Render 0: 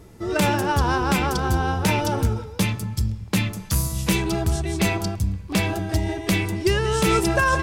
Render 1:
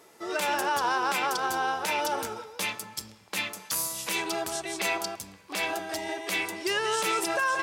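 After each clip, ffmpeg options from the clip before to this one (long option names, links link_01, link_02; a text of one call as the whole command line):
ffmpeg -i in.wav -af "highpass=580,alimiter=limit=-18dB:level=0:latency=1:release=65" out.wav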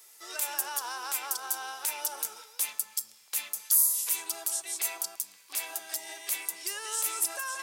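ffmpeg -i in.wav -filter_complex "[0:a]aderivative,acrossover=split=250|1400|7100[link_01][link_02][link_03][link_04];[link_03]acompressor=threshold=-48dB:ratio=6[link_05];[link_01][link_02][link_05][link_04]amix=inputs=4:normalize=0,volume=6.5dB" out.wav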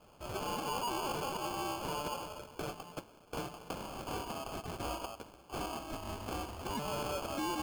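ffmpeg -i in.wav -af "lowpass=frequency=4800:width=0.5412,lowpass=frequency=4800:width=1.3066,acrusher=samples=23:mix=1:aa=0.000001,asoftclip=type=tanh:threshold=-32dB,volume=3.5dB" out.wav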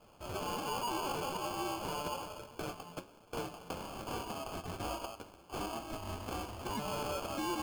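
ffmpeg -i in.wav -af "flanger=delay=8.3:depth=3.6:regen=71:speed=1.2:shape=triangular,volume=4dB" out.wav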